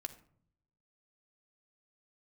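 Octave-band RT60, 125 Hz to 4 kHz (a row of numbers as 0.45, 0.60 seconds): 1.1, 0.90, 0.60, 0.55, 0.45, 0.35 seconds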